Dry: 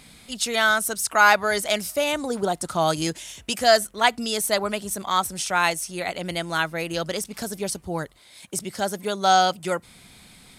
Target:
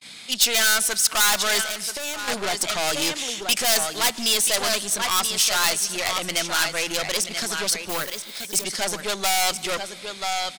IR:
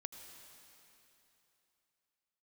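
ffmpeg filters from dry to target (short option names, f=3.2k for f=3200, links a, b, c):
-filter_complex "[0:a]highpass=170,lowpass=4.2k,aecho=1:1:982:0.299,asettb=1/sr,asplit=3[a][b][c];[a]atrim=end=7.894[d];[b]atrim=start=7.89:end=8.64,asetpts=PTS-STARTPTS,afade=t=in:d=0.004:c=qsin,afade=t=out:st=0.746:d=0.004:c=qsin,acrusher=bits=4:mode=log:mix=0:aa=0.000001[e];[c]atrim=start=8.636[f];[d][e]acrossfade=d=0.004:c1=hsin:c2=qsin[g];[g][f]acrossfade=d=0.004:c1=qsin:c2=hsin,aeval=exprs='(tanh(28.2*val(0)+0.55)-tanh(0.55))/28.2':c=same,asettb=1/sr,asplit=3[h][i][j];[h]atrim=end=1.614[k];[i]atrim=start=1.61:end=2.28,asetpts=PTS-STARTPTS,afade=t=in:d=0.004:c=qsin,afade=t=out:st=0.666:d=0.004:c=qsin,acompressor=threshold=-37dB:ratio=6[l];[j]atrim=start=2.276[m];[k][l]acrossfade=d=0.004:c1=hsin:c2=qsin[n];[n][m]acrossfade=d=0.004:c1=qsin:c2=hsin,crystalizer=i=9:c=0,agate=range=-38dB:threshold=-45dB:ratio=16:detection=peak,asplit=2[o][p];[1:a]atrim=start_sample=2205,afade=t=out:st=0.33:d=0.01,atrim=end_sample=14994,asetrate=31311,aresample=44100[q];[p][q]afir=irnorm=-1:irlink=0,volume=-8dB[r];[o][r]amix=inputs=2:normalize=0"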